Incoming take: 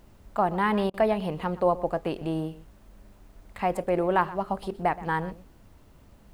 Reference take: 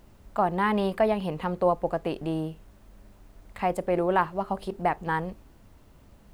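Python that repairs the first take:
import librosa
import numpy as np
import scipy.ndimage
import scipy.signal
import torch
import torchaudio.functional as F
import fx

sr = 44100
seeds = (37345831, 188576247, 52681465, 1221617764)

y = fx.fix_interpolate(x, sr, at_s=(0.9,), length_ms=38.0)
y = fx.fix_echo_inverse(y, sr, delay_ms=124, level_db=-17.5)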